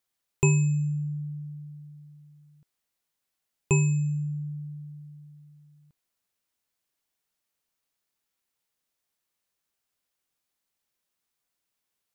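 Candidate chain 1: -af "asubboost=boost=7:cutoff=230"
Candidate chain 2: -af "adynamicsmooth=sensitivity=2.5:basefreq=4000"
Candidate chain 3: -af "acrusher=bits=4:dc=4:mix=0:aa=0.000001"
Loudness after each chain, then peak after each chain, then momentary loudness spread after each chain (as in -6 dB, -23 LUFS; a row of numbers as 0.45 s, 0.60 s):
-18.5 LUFS, -27.5 LUFS, -26.5 LUFS; -2.5 dBFS, -10.0 dBFS, -9.0 dBFS; 22 LU, 20 LU, 21 LU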